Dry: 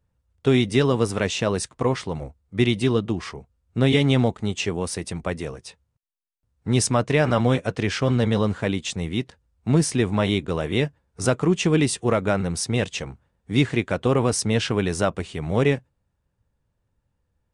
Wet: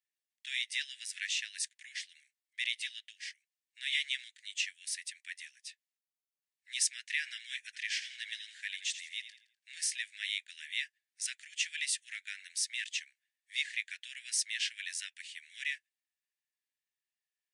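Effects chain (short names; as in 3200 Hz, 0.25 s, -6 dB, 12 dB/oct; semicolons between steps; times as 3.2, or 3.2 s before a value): steep high-pass 1700 Hz 96 dB/oct; 7.6–9.88 frequency-shifting echo 83 ms, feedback 35%, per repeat -30 Hz, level -11.5 dB; gain -5.5 dB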